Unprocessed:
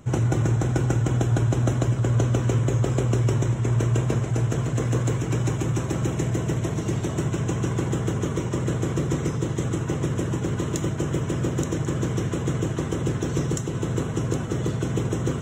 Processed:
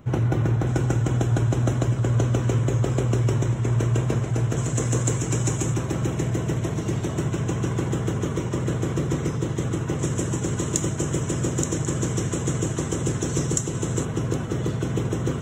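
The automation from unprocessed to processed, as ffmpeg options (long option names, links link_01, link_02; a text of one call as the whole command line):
ffmpeg -i in.wav -af "asetnsamples=nb_out_samples=441:pad=0,asendcmd='0.67 equalizer g -0.5;4.57 equalizer g 11;5.74 equalizer g -0.5;9.99 equalizer g 10;14.05 equalizer g -1',equalizer=frequency=7600:width_type=o:width=1:gain=-11.5" out.wav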